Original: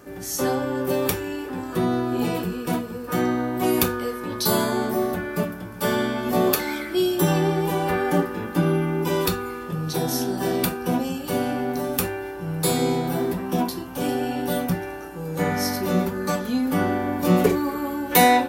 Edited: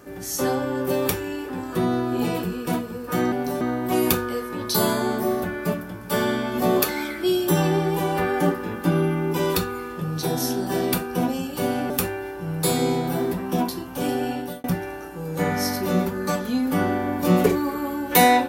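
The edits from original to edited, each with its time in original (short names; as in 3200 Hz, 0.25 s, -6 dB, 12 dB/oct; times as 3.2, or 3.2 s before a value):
11.61–11.9 move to 3.32
14.31–14.64 fade out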